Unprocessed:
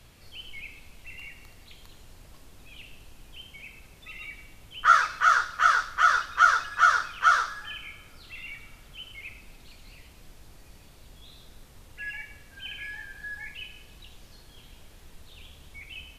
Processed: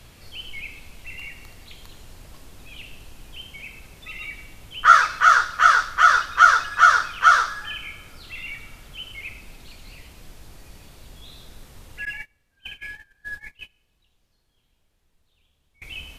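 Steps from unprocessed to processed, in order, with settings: 12.05–15.82 gate -37 dBFS, range -25 dB; gain +6 dB

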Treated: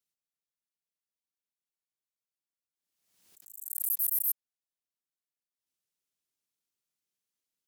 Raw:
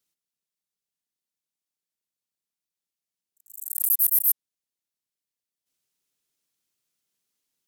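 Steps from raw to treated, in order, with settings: backwards sustainer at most 60 dB/s; gain -9 dB

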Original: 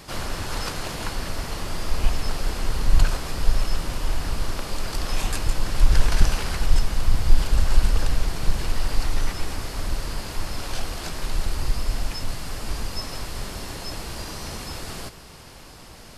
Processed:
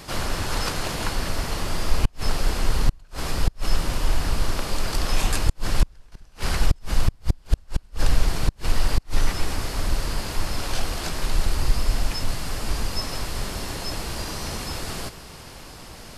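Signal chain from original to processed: flipped gate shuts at -8 dBFS, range -35 dB; gain +3 dB

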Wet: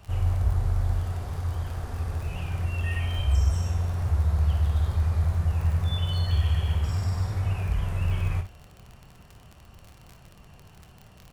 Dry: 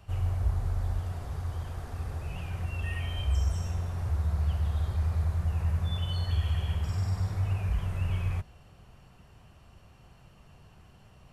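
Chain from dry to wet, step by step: crackle 37/s -38 dBFS; early reflections 26 ms -11 dB, 58 ms -10.5 dB; gain +3.5 dB

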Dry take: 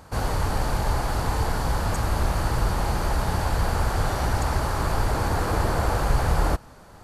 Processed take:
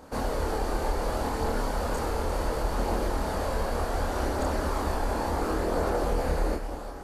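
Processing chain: ten-band EQ 125 Hz -12 dB, 250 Hz +8 dB, 500 Hz +7 dB; compressor, threshold -22 dBFS, peak gain reduction 6.5 dB; on a send: split-band echo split 570 Hz, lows 0.223 s, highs 0.349 s, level -9 dB; on the sum: chorus voices 2, 0.34 Hz, delay 26 ms, depth 1.3 ms

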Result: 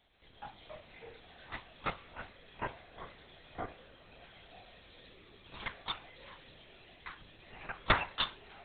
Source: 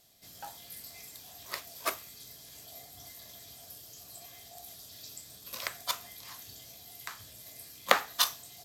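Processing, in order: crackle 320/s -53 dBFS; LPC vocoder at 8 kHz whisper; echoes that change speed 0.135 s, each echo -5 st, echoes 2; gain -2.5 dB

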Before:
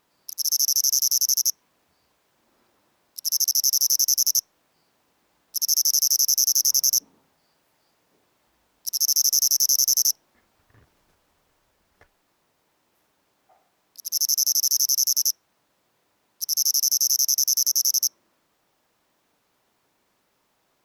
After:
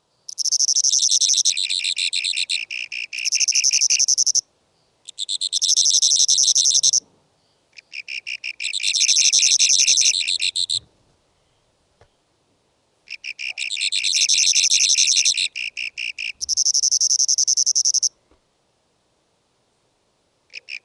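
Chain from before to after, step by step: graphic EQ 125/250/500/2000/4000 Hz +9/-7/+5/-9/+5 dB; echoes that change speed 0.315 s, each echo -7 st, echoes 2, each echo -6 dB; gain +2.5 dB; AAC 96 kbps 22050 Hz

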